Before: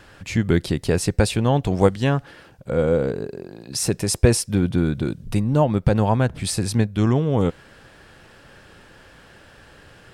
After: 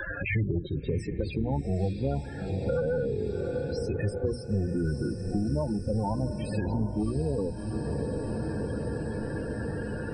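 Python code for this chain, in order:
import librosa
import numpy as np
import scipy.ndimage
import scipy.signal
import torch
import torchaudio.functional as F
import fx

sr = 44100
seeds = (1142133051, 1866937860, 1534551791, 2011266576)

p1 = fx.octave_divider(x, sr, octaves=1, level_db=-2.0)
p2 = fx.hpss(p1, sr, part='percussive', gain_db=-16)
p3 = fx.low_shelf(p2, sr, hz=260.0, db=-10.0)
p4 = fx.leveller(p3, sr, passes=3)
p5 = fx.hum_notches(p4, sr, base_hz=60, count=4)
p6 = fx.spec_topn(p5, sr, count=16)
p7 = p6 + fx.echo_diffused(p6, sr, ms=691, feedback_pct=59, wet_db=-12, dry=0)
p8 = fx.band_squash(p7, sr, depth_pct=100)
y = p8 * 10.0 ** (-8.0 / 20.0)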